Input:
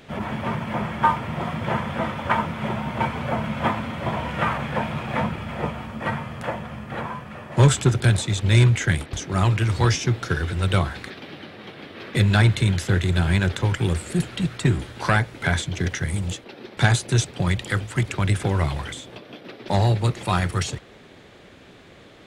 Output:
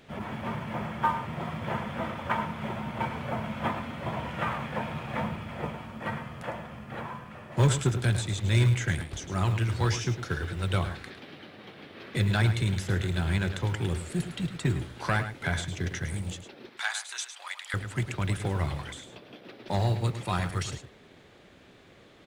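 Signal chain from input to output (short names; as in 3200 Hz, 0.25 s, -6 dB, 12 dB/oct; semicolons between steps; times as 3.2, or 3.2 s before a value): 16.69–17.74 HPF 920 Hz 24 dB/oct; companded quantiser 8-bit; echo 0.106 s -10.5 dB; gain -7.5 dB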